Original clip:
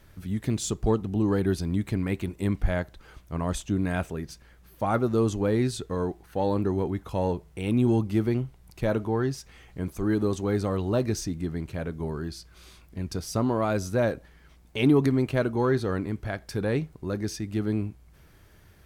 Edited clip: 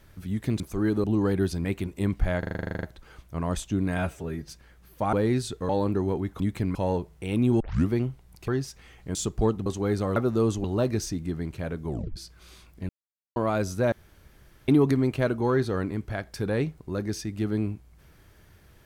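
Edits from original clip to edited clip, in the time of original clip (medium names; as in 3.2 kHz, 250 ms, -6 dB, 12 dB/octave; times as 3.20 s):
0.60–1.11 s: swap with 9.85–10.29 s
1.72–2.07 s: move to 7.10 s
2.81 s: stutter 0.04 s, 12 plays
3.95–4.29 s: stretch 1.5×
4.94–5.42 s: move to 10.79 s
5.98–6.39 s: delete
7.95 s: tape start 0.29 s
8.83–9.18 s: delete
12.04 s: tape stop 0.27 s
13.04–13.51 s: mute
14.07–14.83 s: room tone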